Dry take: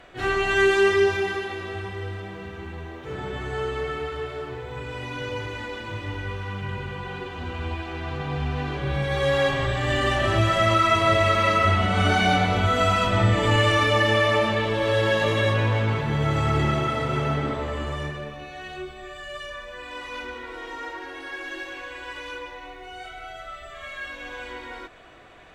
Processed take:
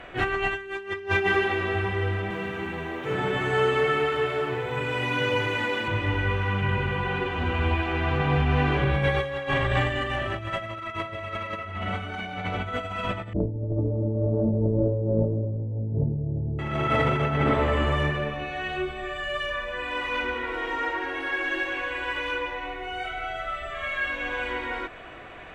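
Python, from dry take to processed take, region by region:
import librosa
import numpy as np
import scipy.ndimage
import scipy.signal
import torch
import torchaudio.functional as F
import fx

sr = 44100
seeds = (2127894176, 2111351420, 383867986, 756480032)

y = fx.chain(x, sr, fx.highpass(hz=110.0, slope=24),
    fx.high_shelf(hz=5500.0, db=9.0), at=(2.3, 5.88))
y = fx.chain(y, sr, fx.gaussian_blur(sigma=20.0),
    fx.env_flatten(amount_pct=50), at=(13.33, 16.59))
y = fx.high_shelf_res(y, sr, hz=3500.0, db=-7.5, q=1.5)
y = fx.over_compress(y, sr, threshold_db=-26.0, ratio=-0.5)
y = y * 10.0 ** (2.0 / 20.0)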